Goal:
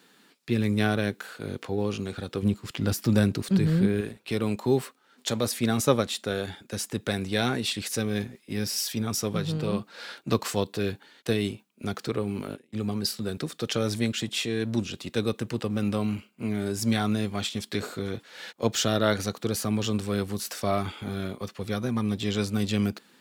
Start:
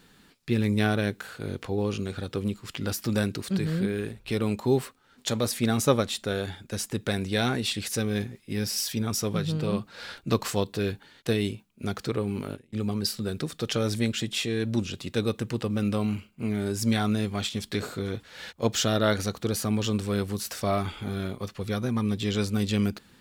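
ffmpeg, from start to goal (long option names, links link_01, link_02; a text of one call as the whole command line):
ffmpeg -i in.wav -filter_complex "[0:a]asettb=1/sr,asplit=3[link_01][link_02][link_03];[link_01]atrim=end=2.424[link_04];[link_02]atrim=start=2.42:end=4.01,asetpts=PTS-STARTPTS,afade=type=in:duration=0.004:curve=qsin,afade=type=out:start_time=1.586:duration=0.004:curve=qsin,lowshelf=frequency=330:gain=7[link_05];[link_03]atrim=start=4.006[link_06];[link_04][link_05]acrossfade=duration=0.004:curve1=hsin:curve2=qsin[link_07];[link_07][link_06]acrossfade=duration=0.004:curve1=qsin:curve2=hsin,acrossover=split=190|2600[link_08][link_09][link_10];[link_08]aeval=exprs='sgn(val(0))*max(abs(val(0))-0.00501,0)':channel_layout=same[link_11];[link_11][link_09][link_10]amix=inputs=3:normalize=0" out.wav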